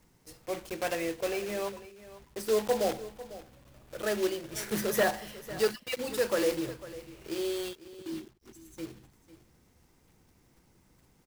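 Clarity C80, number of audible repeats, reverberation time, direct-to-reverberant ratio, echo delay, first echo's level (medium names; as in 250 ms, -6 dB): no reverb, 1, no reverb, no reverb, 499 ms, -16.5 dB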